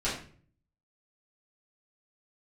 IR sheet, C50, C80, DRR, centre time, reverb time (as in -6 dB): 5.0 dB, 9.5 dB, -10.5 dB, 36 ms, 0.45 s